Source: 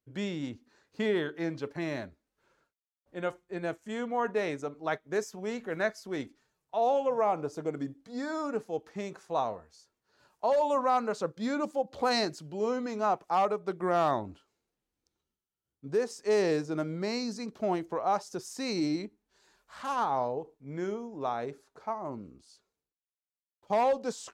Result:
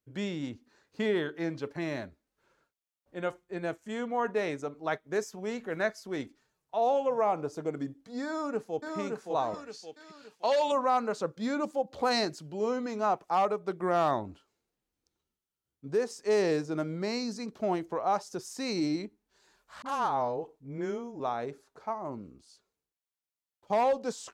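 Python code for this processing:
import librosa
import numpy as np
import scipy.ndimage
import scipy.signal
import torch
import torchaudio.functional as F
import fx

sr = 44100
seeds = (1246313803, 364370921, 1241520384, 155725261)

y = fx.echo_throw(x, sr, start_s=8.25, length_s=0.72, ms=570, feedback_pct=40, wet_db=-3.5)
y = fx.weighting(y, sr, curve='D', at=(9.54, 10.72))
y = fx.dispersion(y, sr, late='highs', ms=40.0, hz=640.0, at=(19.82, 21.2))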